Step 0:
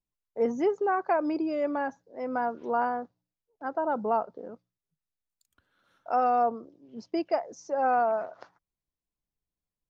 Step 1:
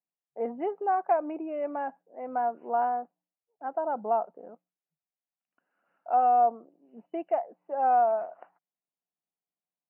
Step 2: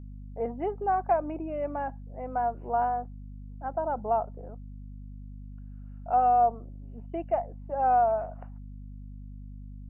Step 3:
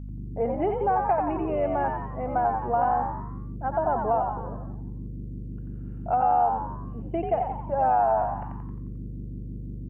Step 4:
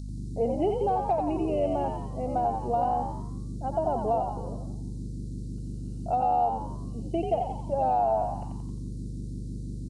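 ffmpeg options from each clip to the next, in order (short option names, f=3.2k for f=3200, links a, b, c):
-af "afftfilt=real='re*between(b*sr/4096,150,3000)':imag='im*between(b*sr/4096,150,3000)':win_size=4096:overlap=0.75,equalizer=f=730:t=o:w=0.57:g=11,volume=-7.5dB"
-af "aeval=exprs='val(0)+0.00891*(sin(2*PI*50*n/s)+sin(2*PI*2*50*n/s)/2+sin(2*PI*3*50*n/s)/3+sin(2*PI*4*50*n/s)/4+sin(2*PI*5*50*n/s)/5)':c=same"
-filter_complex "[0:a]acompressor=threshold=-26dB:ratio=6,asplit=7[a][b][c][d][e][f][g];[b]adelay=88,afreqshift=72,volume=-5dB[h];[c]adelay=176,afreqshift=144,volume=-11.4dB[i];[d]adelay=264,afreqshift=216,volume=-17.8dB[j];[e]adelay=352,afreqshift=288,volume=-24.1dB[k];[f]adelay=440,afreqshift=360,volume=-30.5dB[l];[g]adelay=528,afreqshift=432,volume=-36.9dB[m];[a][h][i][j][k][l][m]amix=inputs=7:normalize=0,volume=5.5dB"
-af "firequalizer=gain_entry='entry(280,0);entry(690,-6);entry(1000,-15);entry(1700,-27);entry(4000,15)':delay=0.05:min_phase=1,aresample=22050,aresample=44100,tiltshelf=f=920:g=-6,volume=6dB"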